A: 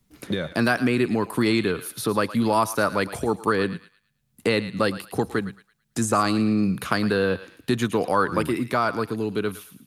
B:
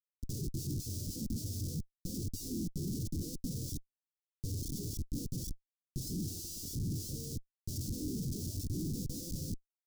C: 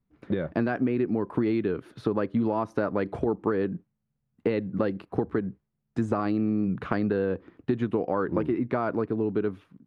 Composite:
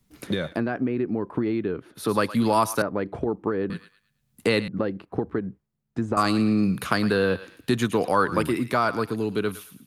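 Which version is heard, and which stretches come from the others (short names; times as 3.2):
A
0.53–2.02 from C, crossfade 0.16 s
2.82–3.7 from C
4.68–6.17 from C
not used: B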